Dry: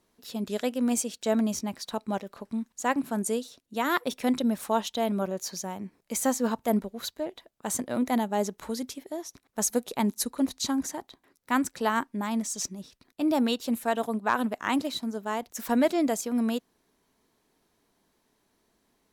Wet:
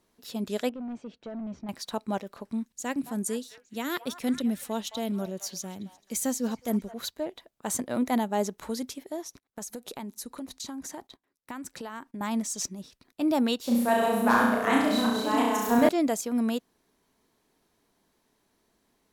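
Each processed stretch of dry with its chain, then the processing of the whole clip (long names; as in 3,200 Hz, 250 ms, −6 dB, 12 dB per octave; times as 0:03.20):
0:00.69–0:01.69: downward compressor 2.5 to 1, threshold −32 dBFS + hard clipping −32.5 dBFS + head-to-tape spacing loss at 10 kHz 40 dB
0:02.65–0:06.94: parametric band 1,000 Hz −10.5 dB 1.9 octaves + echo through a band-pass that steps 216 ms, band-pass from 950 Hz, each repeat 0.7 octaves, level −9.5 dB
0:09.25–0:12.21: noise gate −57 dBFS, range −15 dB + downward compressor 12 to 1, threshold −34 dBFS
0:13.62–0:15.89: delay that plays each chunk backwards 361 ms, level −3 dB + parametric band 5,000 Hz −2.5 dB 2.1 octaves + flutter between parallel walls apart 5.8 metres, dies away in 0.95 s
whole clip: no processing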